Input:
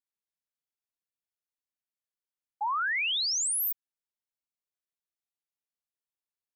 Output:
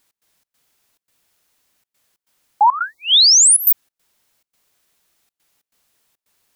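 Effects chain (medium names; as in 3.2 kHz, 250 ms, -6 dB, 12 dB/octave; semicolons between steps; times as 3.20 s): 2.79–3.45 s: Chebyshev band-stop 1.1–3.8 kHz, order 3; trance gate "x.xx.xxxx.xxxxxx" 139 bpm -24 dB; loudness maximiser +35 dB; trim -6 dB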